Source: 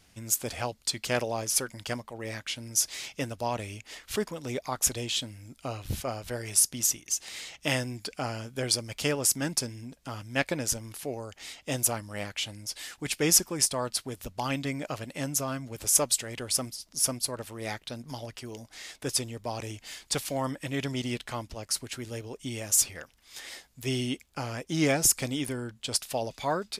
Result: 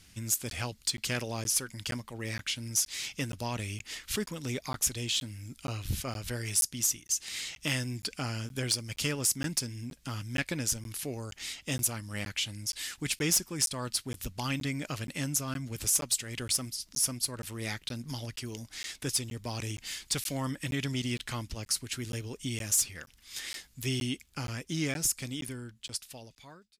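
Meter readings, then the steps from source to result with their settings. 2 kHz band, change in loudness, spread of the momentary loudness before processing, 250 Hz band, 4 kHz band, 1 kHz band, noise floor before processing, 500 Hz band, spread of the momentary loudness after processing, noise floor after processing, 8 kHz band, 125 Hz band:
-1.5 dB, -3.0 dB, 16 LU, -2.5 dB, -1.0 dB, -7.0 dB, -63 dBFS, -8.0 dB, 11 LU, -61 dBFS, -3.0 dB, +1.0 dB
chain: fade out at the end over 3.04 s; peaking EQ 660 Hz -11.5 dB 1.7 oct; compression 1.5:1, threshold -38 dBFS, peak gain reduction 8 dB; sine folder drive 6 dB, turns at -14.5 dBFS; crackling interface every 0.47 s, samples 512, zero, from 0.50 s; trim -5 dB

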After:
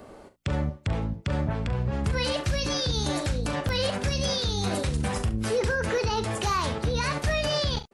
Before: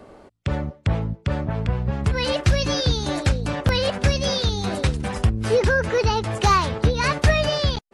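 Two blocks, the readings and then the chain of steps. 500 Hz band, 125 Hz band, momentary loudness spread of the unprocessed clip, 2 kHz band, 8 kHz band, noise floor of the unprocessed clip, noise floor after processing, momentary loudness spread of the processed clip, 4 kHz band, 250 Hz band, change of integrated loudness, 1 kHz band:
-5.5 dB, -6.0 dB, 7 LU, -6.0 dB, -1.5 dB, -53 dBFS, -49 dBFS, 4 LU, -3.5 dB, -4.0 dB, -5.5 dB, -6.5 dB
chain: treble shelf 7.8 kHz +9.5 dB; peak limiter -17 dBFS, peak gain reduction 10 dB; on a send: early reflections 40 ms -11.5 dB, 69 ms -16 dB; on the sum: trim -1.5 dB

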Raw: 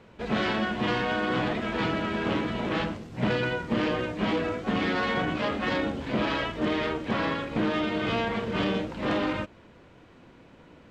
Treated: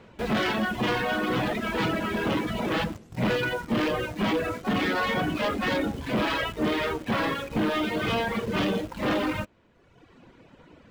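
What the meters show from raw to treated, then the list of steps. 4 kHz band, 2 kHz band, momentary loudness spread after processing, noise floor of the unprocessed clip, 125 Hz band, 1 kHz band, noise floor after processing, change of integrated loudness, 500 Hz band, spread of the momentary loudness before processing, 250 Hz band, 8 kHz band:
+1.5 dB, +1.5 dB, 3 LU, -54 dBFS, +0.5 dB, +1.0 dB, -57 dBFS, +1.0 dB, +1.0 dB, 3 LU, +0.5 dB, no reading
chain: reverb removal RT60 1.2 s; in parallel at -7 dB: bit crusher 7-bit; on the sum: saturation -22 dBFS, distortion -14 dB; trim +2.5 dB

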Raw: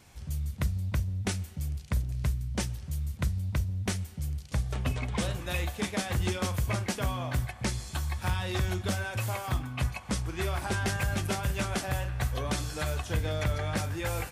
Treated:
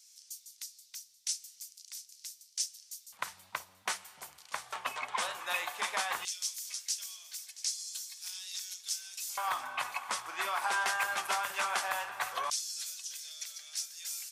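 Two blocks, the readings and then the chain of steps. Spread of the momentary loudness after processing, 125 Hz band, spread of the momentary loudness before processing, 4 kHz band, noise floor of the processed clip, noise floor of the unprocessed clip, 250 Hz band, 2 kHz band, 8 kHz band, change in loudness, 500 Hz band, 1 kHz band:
14 LU, under -40 dB, 4 LU, +1.0 dB, -62 dBFS, -46 dBFS, -27.0 dB, 0.0 dB, +4.0 dB, -3.5 dB, -11.0 dB, +2.0 dB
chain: echo whose repeats swap between lows and highs 340 ms, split 850 Hz, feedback 60%, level -11 dB; LFO high-pass square 0.16 Hz 990–5500 Hz

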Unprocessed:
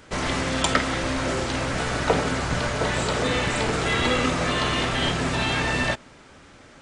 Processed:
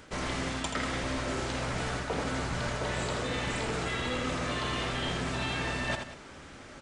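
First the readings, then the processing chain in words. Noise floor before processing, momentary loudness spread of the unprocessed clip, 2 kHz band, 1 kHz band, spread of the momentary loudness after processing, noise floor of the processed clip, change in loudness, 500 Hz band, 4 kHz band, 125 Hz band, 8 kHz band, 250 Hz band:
-49 dBFS, 4 LU, -8.5 dB, -8.5 dB, 3 LU, -48 dBFS, -8.5 dB, -9.0 dB, -9.0 dB, -7.5 dB, -8.5 dB, -8.5 dB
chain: reverse; compression 6:1, threshold -31 dBFS, peak gain reduction 16 dB; reverse; multi-tap echo 81/188 ms -6.5/-14.5 dB

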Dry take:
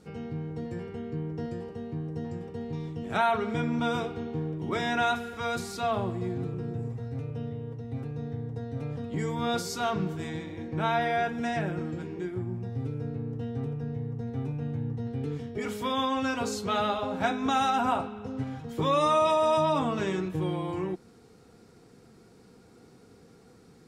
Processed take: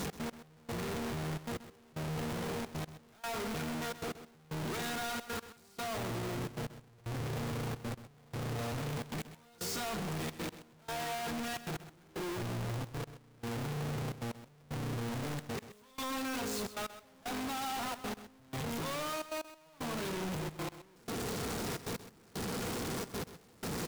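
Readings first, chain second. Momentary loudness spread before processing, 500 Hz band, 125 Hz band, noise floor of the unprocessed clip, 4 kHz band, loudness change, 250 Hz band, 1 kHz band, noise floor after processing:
11 LU, -10.0 dB, -6.5 dB, -56 dBFS, -4.0 dB, -8.5 dB, -7.5 dB, -11.5 dB, -61 dBFS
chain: one-bit comparator; trance gate "x.x....xxxxxx" 153 bpm -24 dB; on a send: delay 129 ms -13.5 dB; on the sum: trim -6.5 dB

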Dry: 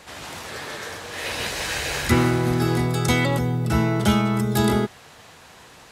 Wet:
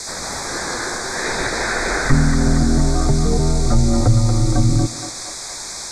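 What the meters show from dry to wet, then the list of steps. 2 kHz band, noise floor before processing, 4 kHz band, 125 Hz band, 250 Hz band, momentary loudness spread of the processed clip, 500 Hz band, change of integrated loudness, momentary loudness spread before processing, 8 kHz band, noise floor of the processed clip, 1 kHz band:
+3.5 dB, -48 dBFS, +3.0 dB, +6.0 dB, +2.5 dB, 11 LU, +1.5 dB, +3.5 dB, 13 LU, +9.0 dB, -31 dBFS, +2.0 dB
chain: low-pass that closes with the level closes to 310 Hz, closed at -15.5 dBFS; band noise 2.4–8.4 kHz -38 dBFS; frequency shift -96 Hz; in parallel at -5 dB: saturation -18.5 dBFS, distortion -13 dB; on the sum: Butterworth band-stop 2.9 kHz, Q 1.6; on a send: band-passed feedback delay 233 ms, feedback 70%, band-pass 1.1 kHz, level -5.5 dB; on the sum: trim +4.5 dB

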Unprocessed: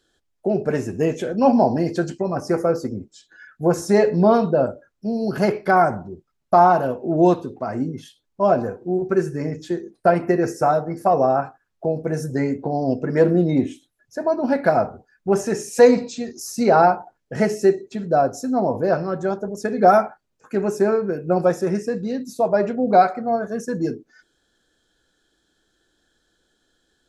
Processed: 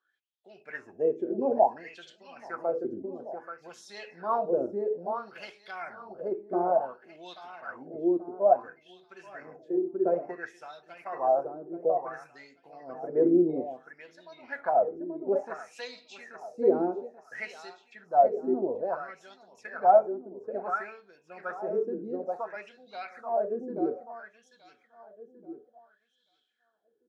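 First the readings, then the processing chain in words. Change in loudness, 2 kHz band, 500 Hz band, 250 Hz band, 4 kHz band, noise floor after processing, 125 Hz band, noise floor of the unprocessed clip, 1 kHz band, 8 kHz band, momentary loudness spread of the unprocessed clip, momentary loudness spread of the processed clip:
-9.0 dB, -11.5 dB, -9.5 dB, -12.0 dB, under -10 dB, -73 dBFS, -24.0 dB, -72 dBFS, -9.5 dB, under -20 dB, 13 LU, 21 LU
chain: feedback delay 833 ms, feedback 31%, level -7 dB; wah-wah 0.58 Hz 330–3600 Hz, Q 5.8

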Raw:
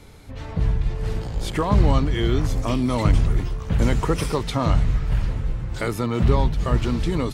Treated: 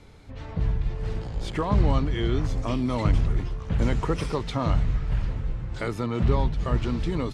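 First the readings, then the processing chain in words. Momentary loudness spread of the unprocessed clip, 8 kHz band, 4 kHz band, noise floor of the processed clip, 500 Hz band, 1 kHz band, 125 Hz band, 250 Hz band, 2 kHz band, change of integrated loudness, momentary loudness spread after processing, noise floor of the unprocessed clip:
8 LU, -9.5 dB, -5.5 dB, -38 dBFS, -4.0 dB, -4.5 dB, -4.0 dB, -4.0 dB, -4.5 dB, -4.0 dB, 8 LU, -34 dBFS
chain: distance through air 59 m; trim -4 dB

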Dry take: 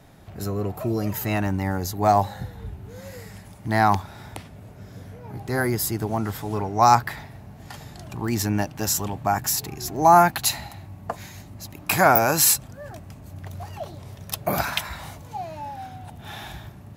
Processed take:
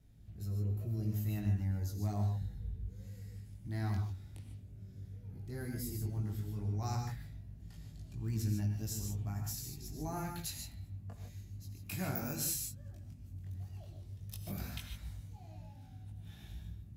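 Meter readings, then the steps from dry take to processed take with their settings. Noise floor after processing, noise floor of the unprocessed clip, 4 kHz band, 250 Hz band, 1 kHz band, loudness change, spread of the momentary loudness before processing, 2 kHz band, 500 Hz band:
-53 dBFS, -44 dBFS, -18.5 dB, -14.0 dB, -29.0 dB, -17.5 dB, 23 LU, -24.0 dB, -24.5 dB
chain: amplifier tone stack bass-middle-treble 10-0-1; chorus 0.12 Hz, delay 18.5 ms, depth 2.8 ms; gated-style reverb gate 170 ms rising, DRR 4 dB; trim +4.5 dB

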